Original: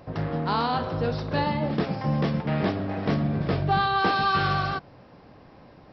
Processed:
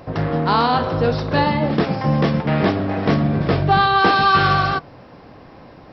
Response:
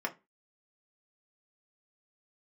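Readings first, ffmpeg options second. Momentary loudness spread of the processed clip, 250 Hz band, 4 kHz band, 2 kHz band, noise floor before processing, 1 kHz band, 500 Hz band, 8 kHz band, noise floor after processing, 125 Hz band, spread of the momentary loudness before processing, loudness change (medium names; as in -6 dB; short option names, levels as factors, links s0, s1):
6 LU, +7.5 dB, +8.0 dB, +8.5 dB, -51 dBFS, +8.5 dB, +8.5 dB, no reading, -43 dBFS, +7.0 dB, 6 LU, +8.0 dB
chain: -filter_complex "[0:a]asplit=2[s0][s1];[1:a]atrim=start_sample=2205[s2];[s1][s2]afir=irnorm=-1:irlink=0,volume=0.106[s3];[s0][s3]amix=inputs=2:normalize=0,volume=2.37"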